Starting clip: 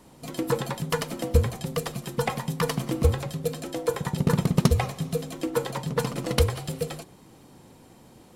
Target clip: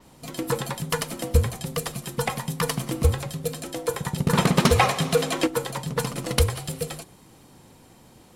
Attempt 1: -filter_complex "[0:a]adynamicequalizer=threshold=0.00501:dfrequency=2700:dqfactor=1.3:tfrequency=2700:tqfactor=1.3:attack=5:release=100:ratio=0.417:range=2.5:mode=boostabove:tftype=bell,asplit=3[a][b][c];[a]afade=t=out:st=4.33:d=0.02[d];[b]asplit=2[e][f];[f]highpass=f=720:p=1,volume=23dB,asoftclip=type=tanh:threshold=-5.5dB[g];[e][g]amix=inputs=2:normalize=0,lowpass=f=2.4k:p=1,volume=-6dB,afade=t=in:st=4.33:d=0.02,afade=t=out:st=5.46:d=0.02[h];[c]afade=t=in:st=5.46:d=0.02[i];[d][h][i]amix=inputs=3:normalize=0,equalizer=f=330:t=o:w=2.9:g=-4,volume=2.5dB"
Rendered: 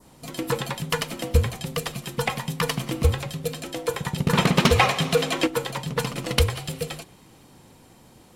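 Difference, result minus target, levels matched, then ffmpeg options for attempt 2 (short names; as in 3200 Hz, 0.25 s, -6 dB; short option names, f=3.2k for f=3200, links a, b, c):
8000 Hz band -2.5 dB
-filter_complex "[0:a]adynamicequalizer=threshold=0.00501:dfrequency=10000:dqfactor=1.3:tfrequency=10000:tqfactor=1.3:attack=5:release=100:ratio=0.417:range=2.5:mode=boostabove:tftype=bell,asplit=3[a][b][c];[a]afade=t=out:st=4.33:d=0.02[d];[b]asplit=2[e][f];[f]highpass=f=720:p=1,volume=23dB,asoftclip=type=tanh:threshold=-5.5dB[g];[e][g]amix=inputs=2:normalize=0,lowpass=f=2.4k:p=1,volume=-6dB,afade=t=in:st=4.33:d=0.02,afade=t=out:st=5.46:d=0.02[h];[c]afade=t=in:st=5.46:d=0.02[i];[d][h][i]amix=inputs=3:normalize=0,equalizer=f=330:t=o:w=2.9:g=-4,volume=2.5dB"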